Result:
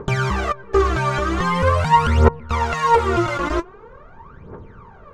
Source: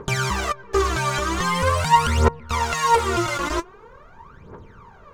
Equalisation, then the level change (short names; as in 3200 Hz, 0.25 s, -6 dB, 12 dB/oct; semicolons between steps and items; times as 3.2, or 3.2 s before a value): LPF 1500 Hz 6 dB/oct; notch 980 Hz, Q 17; +4.5 dB